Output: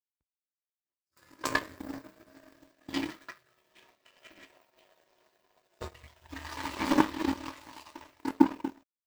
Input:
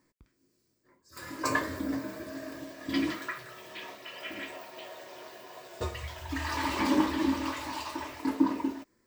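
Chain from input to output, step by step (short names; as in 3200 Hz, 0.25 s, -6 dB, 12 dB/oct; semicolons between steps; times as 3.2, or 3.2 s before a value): power-law curve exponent 2; gain +8 dB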